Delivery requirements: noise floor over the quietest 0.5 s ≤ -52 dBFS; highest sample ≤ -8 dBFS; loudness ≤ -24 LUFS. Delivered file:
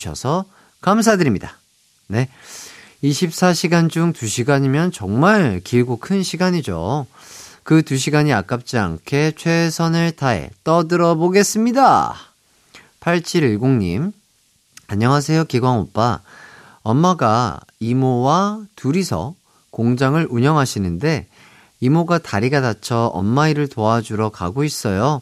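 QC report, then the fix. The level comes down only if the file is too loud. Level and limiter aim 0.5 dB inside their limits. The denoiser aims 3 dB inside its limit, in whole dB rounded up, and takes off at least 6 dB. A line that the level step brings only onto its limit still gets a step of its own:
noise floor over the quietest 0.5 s -59 dBFS: OK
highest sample -2.0 dBFS: fail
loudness -17.5 LUFS: fail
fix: gain -7 dB

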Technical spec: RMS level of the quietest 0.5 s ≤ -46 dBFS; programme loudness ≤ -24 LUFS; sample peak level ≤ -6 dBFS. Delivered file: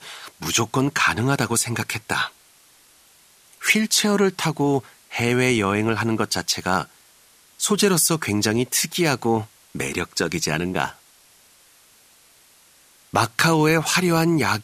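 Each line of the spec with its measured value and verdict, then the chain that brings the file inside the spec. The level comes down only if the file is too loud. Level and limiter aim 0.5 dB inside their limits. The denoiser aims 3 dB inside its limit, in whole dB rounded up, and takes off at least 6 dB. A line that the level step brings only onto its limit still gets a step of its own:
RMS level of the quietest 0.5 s -54 dBFS: OK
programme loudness -21.0 LUFS: fail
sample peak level -5.0 dBFS: fail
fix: gain -3.5 dB

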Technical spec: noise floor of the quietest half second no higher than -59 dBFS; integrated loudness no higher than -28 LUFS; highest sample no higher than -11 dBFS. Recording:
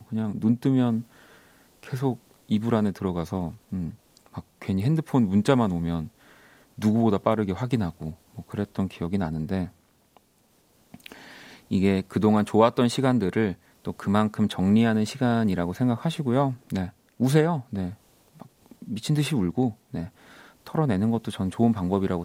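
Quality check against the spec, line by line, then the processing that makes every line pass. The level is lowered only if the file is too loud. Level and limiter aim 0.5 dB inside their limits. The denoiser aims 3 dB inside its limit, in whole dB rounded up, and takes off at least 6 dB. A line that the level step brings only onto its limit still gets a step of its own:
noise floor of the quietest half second -63 dBFS: OK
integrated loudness -25.0 LUFS: fail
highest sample -5.5 dBFS: fail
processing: gain -3.5 dB; limiter -11.5 dBFS

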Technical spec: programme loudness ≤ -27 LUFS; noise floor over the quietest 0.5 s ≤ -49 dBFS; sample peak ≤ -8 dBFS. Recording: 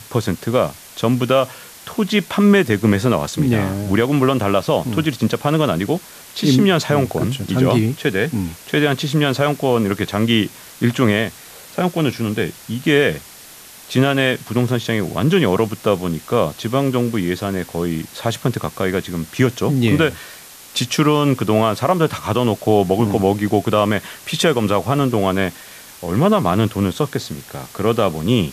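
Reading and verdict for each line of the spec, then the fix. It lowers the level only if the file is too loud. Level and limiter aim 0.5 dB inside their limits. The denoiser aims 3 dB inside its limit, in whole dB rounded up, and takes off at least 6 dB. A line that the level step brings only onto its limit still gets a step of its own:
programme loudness -18.0 LUFS: fail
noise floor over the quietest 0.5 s -40 dBFS: fail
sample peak -3.5 dBFS: fail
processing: gain -9.5 dB

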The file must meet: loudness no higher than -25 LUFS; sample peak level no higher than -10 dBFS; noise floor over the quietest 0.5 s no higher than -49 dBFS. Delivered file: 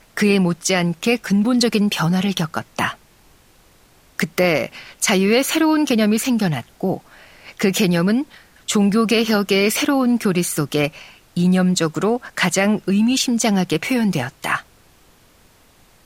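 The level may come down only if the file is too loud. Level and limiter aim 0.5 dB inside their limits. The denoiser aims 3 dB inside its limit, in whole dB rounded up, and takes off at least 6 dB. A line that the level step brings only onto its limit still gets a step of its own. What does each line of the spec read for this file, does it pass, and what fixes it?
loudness -18.5 LUFS: fail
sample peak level -5.0 dBFS: fail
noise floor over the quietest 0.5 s -52 dBFS: OK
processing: gain -7 dB

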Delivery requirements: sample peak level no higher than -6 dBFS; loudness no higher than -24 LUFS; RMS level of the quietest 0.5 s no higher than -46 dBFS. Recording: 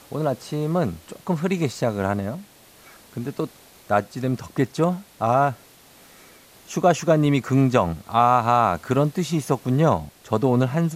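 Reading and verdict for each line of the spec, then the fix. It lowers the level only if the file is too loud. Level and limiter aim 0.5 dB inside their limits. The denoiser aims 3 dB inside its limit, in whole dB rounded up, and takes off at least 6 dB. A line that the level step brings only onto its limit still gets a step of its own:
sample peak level -5.0 dBFS: fail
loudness -22.5 LUFS: fail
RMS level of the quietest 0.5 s -50 dBFS: OK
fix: gain -2 dB

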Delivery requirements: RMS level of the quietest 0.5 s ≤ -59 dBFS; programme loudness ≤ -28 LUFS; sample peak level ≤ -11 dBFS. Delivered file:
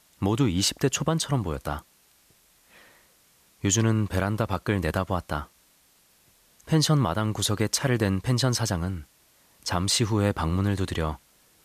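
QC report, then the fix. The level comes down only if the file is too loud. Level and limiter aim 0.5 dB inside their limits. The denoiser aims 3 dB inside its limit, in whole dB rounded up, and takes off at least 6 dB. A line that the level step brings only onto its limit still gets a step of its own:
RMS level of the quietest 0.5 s -62 dBFS: OK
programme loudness -25.5 LUFS: fail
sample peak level -10.5 dBFS: fail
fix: gain -3 dB

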